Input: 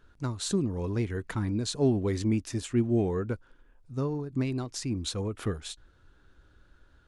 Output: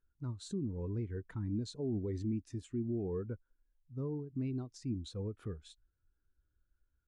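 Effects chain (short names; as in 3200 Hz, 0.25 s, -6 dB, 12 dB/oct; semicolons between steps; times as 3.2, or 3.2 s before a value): limiter -24 dBFS, peak gain reduction 8.5 dB; spectral expander 1.5:1; gain -4.5 dB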